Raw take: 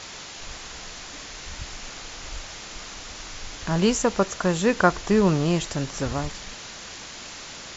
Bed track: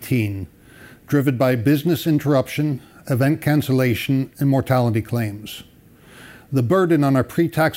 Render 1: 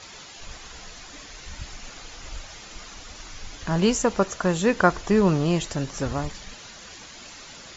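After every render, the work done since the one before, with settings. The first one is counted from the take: noise reduction 8 dB, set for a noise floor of -40 dBFS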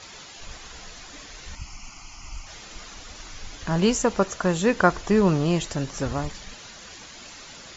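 1.55–2.47 s: static phaser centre 2.5 kHz, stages 8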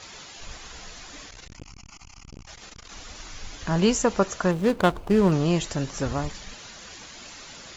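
1.28–2.92 s: transformer saturation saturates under 360 Hz; 4.51–5.32 s: median filter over 25 samples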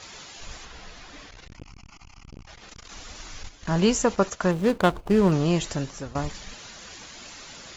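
0.65–2.69 s: distance through air 110 m; 3.43–5.06 s: gate -36 dBFS, range -10 dB; 5.74–6.15 s: fade out, to -15.5 dB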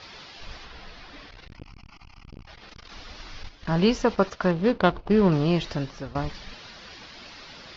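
steep low-pass 5.3 kHz 48 dB/octave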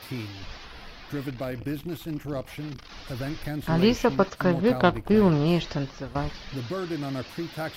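add bed track -15 dB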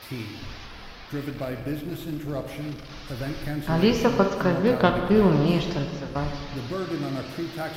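plate-style reverb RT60 1.8 s, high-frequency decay 0.9×, DRR 4 dB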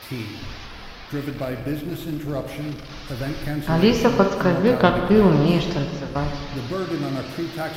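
trim +3.5 dB

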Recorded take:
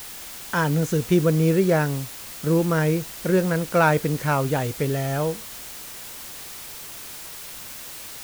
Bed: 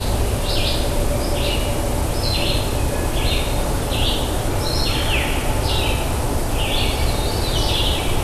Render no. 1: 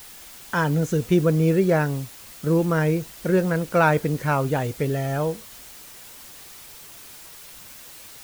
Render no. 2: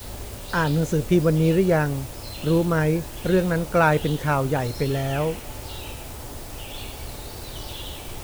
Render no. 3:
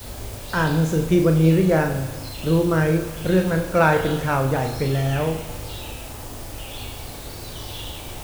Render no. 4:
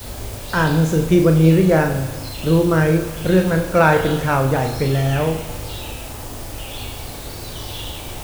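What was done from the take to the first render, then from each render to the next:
noise reduction 6 dB, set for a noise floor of -38 dBFS
add bed -16.5 dB
on a send: flutter echo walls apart 6.4 m, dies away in 0.33 s; on the sum: gated-style reverb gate 500 ms falling, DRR 9.5 dB
trim +3.5 dB; peak limiter -2 dBFS, peak gain reduction 1.5 dB

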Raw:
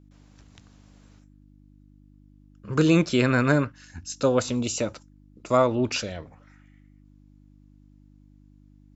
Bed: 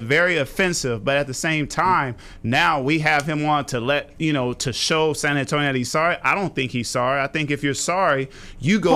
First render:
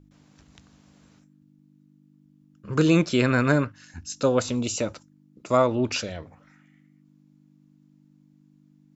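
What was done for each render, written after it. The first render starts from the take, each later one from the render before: de-hum 50 Hz, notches 2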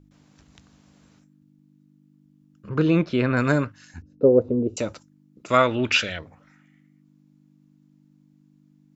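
2.69–3.37 s: distance through air 260 m; 4.02–4.77 s: resonant low-pass 430 Hz, resonance Q 3.5; 5.48–6.19 s: high-order bell 2.2 kHz +11.5 dB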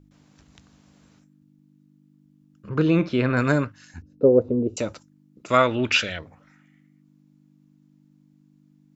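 2.93–3.43 s: flutter echo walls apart 9.5 m, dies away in 0.22 s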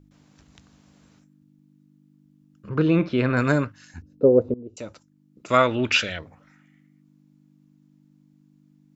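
2.77–3.18 s: Bessel low-pass 4.4 kHz; 4.54–5.53 s: fade in, from -20.5 dB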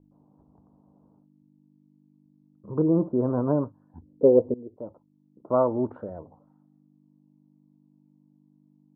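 elliptic low-pass 970 Hz, stop band 60 dB; bass shelf 130 Hz -9.5 dB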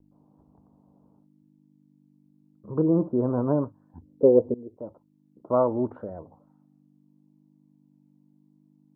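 vibrato 0.84 Hz 21 cents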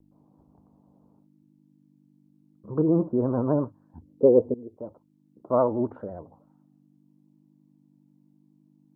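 vibrato 12 Hz 66 cents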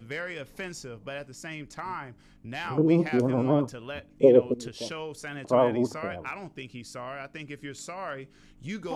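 add bed -17.5 dB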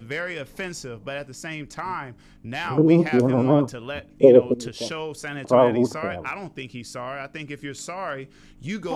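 trim +5.5 dB; peak limiter -3 dBFS, peak gain reduction 1.5 dB

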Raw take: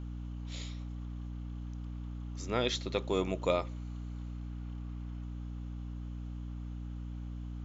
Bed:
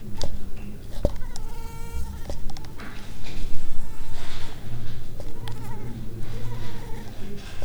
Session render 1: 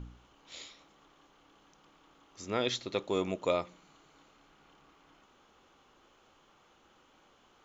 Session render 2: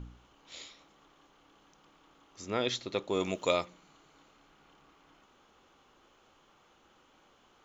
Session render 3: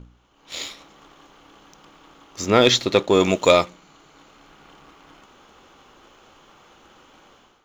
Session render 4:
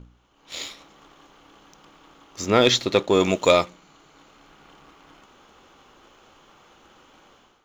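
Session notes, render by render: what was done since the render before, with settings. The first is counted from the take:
de-hum 60 Hz, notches 5
3.20–3.65 s: treble shelf 2.4 kHz +10.5 dB
level rider gain up to 14.5 dB; waveshaping leveller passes 1
trim -2 dB

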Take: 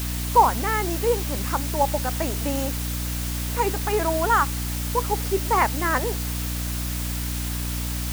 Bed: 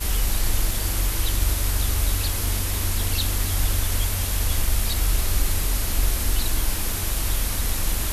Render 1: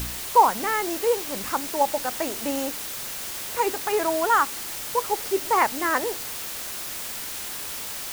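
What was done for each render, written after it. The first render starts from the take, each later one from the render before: de-hum 60 Hz, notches 5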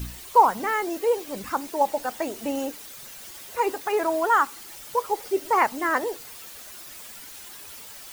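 noise reduction 11 dB, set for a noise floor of -34 dBFS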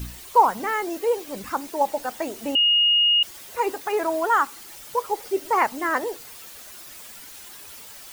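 2.55–3.23 s: bleep 2.86 kHz -15 dBFS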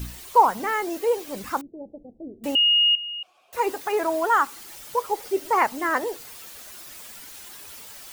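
1.61–2.44 s: Gaussian low-pass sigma 23 samples; 2.95–3.53 s: vowel filter a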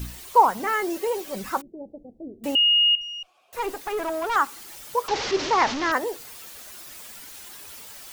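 0.66–1.75 s: comb 5.3 ms, depth 49%; 3.01–4.36 s: valve stage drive 22 dB, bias 0.45; 5.08–5.92 s: one-bit delta coder 32 kbps, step -22 dBFS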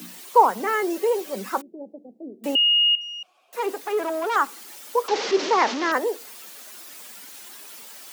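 steep high-pass 180 Hz 72 dB/octave; dynamic bell 450 Hz, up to +5 dB, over -41 dBFS, Q 2.3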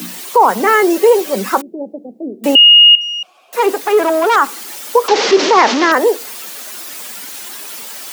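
loudness maximiser +13 dB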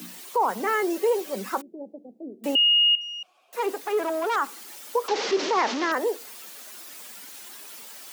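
trim -13.5 dB

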